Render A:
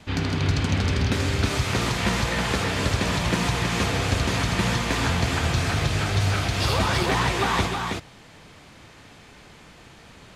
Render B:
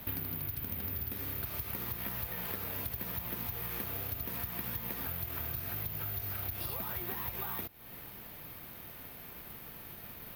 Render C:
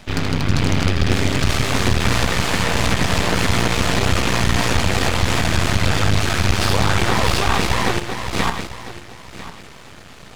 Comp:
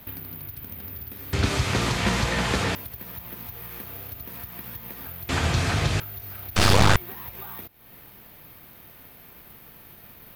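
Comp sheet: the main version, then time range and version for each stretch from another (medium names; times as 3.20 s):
B
1.33–2.75 s: from A
5.29–6.00 s: from A
6.56–6.96 s: from C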